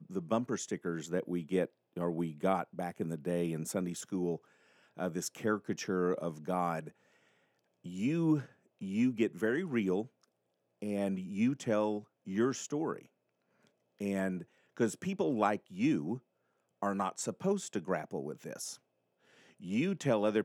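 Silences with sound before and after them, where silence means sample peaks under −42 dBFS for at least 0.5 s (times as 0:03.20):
0:04.36–0:04.99
0:06.89–0:07.86
0:10.05–0:10.82
0:12.99–0:14.01
0:16.18–0:16.83
0:18.75–0:19.64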